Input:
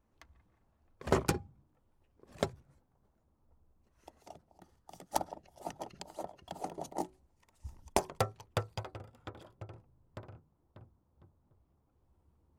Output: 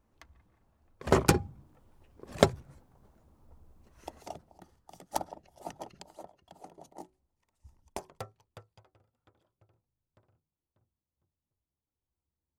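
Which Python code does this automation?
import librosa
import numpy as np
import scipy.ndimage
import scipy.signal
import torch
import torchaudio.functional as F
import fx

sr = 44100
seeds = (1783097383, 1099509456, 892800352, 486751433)

y = fx.gain(x, sr, db=fx.line((1.05, 3.0), (1.45, 11.0), (4.17, 11.0), (4.9, 0.0), (5.84, 0.0), (6.48, -10.0), (8.19, -10.0), (8.72, -20.0)))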